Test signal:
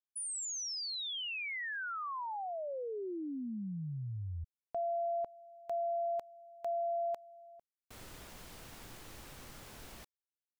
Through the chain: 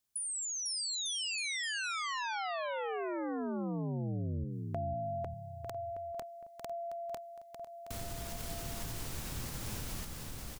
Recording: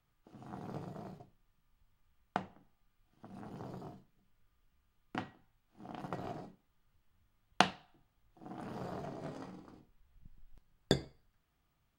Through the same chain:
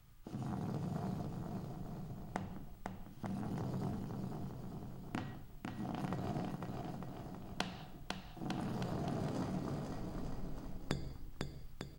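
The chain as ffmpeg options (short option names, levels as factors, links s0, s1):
-af "bass=f=250:g=9,treble=f=4000:g=6,acompressor=threshold=0.00447:ratio=5:attack=15:release=101:detection=rms,aecho=1:1:500|900|1220|1476|1681:0.631|0.398|0.251|0.158|0.1,volume=2.51"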